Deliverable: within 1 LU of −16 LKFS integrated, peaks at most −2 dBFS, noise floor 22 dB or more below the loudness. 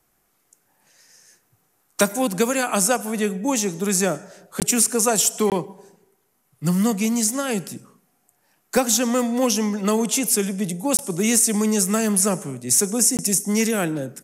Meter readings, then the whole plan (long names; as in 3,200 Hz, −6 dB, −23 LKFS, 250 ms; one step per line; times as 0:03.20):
number of dropouts 4; longest dropout 18 ms; integrated loudness −20.5 LKFS; sample peak −5.0 dBFS; target loudness −16.0 LKFS
→ repair the gap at 0:04.60/0:05.50/0:10.97/0:13.17, 18 ms
level +4.5 dB
brickwall limiter −2 dBFS